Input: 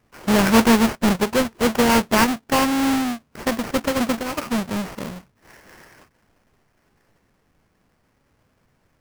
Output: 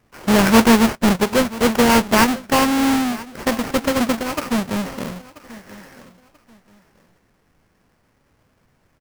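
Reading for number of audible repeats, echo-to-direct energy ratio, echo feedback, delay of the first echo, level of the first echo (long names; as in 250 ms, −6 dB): 2, −18.5 dB, 27%, 985 ms, −19.0 dB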